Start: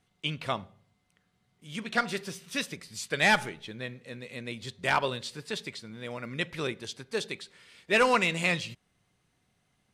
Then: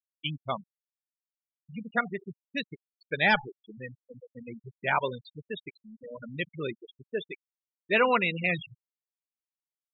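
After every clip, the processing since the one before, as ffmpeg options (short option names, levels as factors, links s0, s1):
-af "afftfilt=real='re*gte(hypot(re,im),0.0631)':imag='im*gte(hypot(re,im),0.0631)':win_size=1024:overlap=0.75"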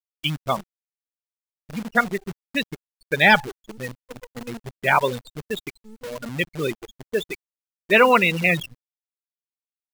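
-af "acrusher=bits=8:dc=4:mix=0:aa=0.000001,volume=2.66"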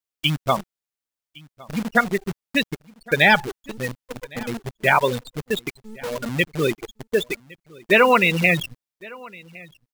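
-af "acompressor=threshold=0.112:ratio=2,aecho=1:1:1111:0.0668,volume=1.68"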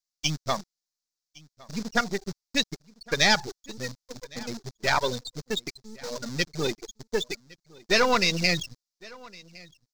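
-filter_complex "[0:a]aeval=exprs='if(lt(val(0),0),0.447*val(0),val(0))':c=same,acrossover=split=5800[s0][s1];[s0]aexciter=amount=13.3:drive=4.7:freq=4400[s2];[s2][s1]amix=inputs=2:normalize=0,volume=0.596"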